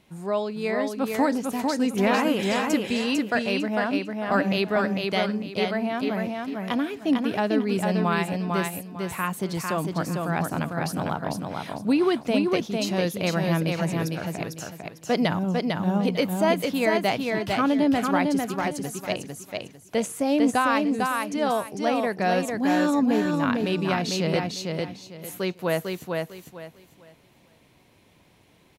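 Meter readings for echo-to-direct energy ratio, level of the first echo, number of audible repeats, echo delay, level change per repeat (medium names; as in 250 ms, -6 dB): -3.0 dB, -3.5 dB, 3, 450 ms, -11.5 dB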